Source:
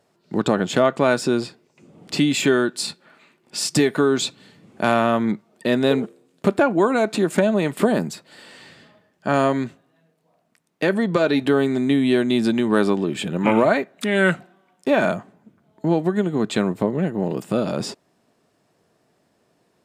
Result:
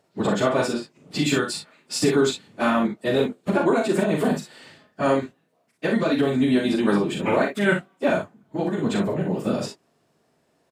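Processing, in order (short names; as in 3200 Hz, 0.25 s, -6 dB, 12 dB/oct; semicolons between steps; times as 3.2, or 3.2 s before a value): plain phase-vocoder stretch 0.54×; early reflections 39 ms -5 dB, 59 ms -8 dB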